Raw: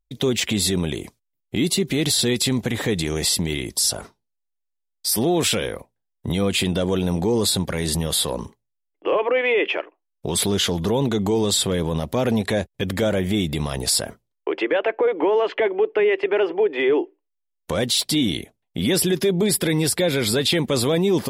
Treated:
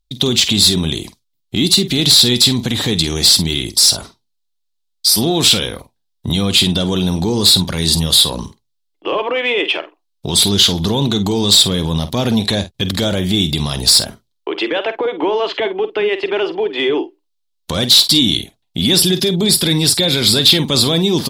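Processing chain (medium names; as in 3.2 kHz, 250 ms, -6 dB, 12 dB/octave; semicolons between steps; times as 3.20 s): graphic EQ 500/2000/4000 Hz -7/-7/+11 dB; in parallel at -9 dB: sine folder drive 8 dB, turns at -1 dBFS; on the sum: doubling 49 ms -12 dB; trim -1 dB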